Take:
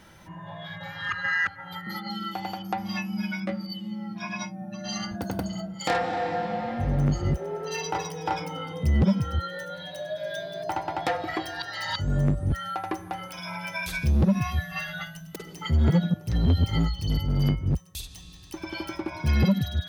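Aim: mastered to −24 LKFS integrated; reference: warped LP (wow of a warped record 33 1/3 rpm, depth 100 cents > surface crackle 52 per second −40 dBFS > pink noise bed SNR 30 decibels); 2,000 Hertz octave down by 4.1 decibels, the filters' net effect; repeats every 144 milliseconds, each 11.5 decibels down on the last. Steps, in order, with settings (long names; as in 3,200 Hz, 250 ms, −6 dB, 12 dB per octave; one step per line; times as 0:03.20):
parametric band 2,000 Hz −5 dB
repeating echo 144 ms, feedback 27%, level −11.5 dB
wow of a warped record 33 1/3 rpm, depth 100 cents
surface crackle 52 per second −40 dBFS
pink noise bed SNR 30 dB
level +4.5 dB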